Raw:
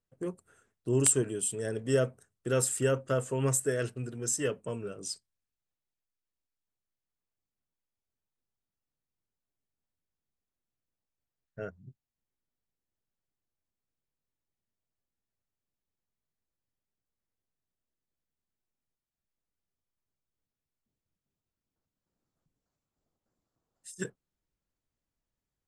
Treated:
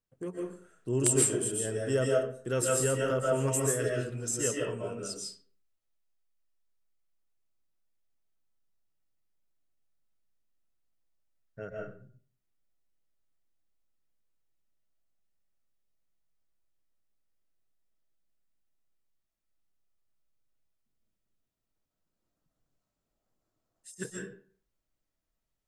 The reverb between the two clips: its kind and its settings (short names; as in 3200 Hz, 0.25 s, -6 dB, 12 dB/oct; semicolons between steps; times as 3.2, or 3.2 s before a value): digital reverb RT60 0.48 s, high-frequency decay 0.7×, pre-delay 0.1 s, DRR -2.5 dB; gain -2.5 dB